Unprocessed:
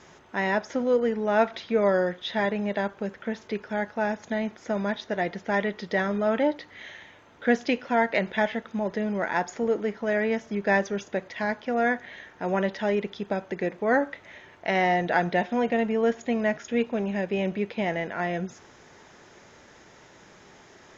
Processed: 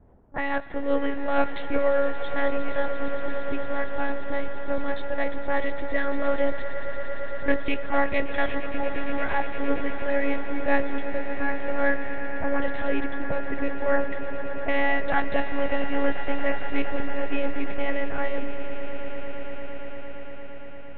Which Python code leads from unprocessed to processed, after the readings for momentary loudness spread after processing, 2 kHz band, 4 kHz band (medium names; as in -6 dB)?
10 LU, 0.0 dB, -2.5 dB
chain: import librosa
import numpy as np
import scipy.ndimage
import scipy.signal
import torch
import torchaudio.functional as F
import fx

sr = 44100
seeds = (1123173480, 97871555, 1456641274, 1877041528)

y = fx.lpc_monotone(x, sr, seeds[0], pitch_hz=280.0, order=8)
y = fx.env_lowpass(y, sr, base_hz=470.0, full_db=-20.5)
y = fx.echo_swell(y, sr, ms=115, loudest=8, wet_db=-15.0)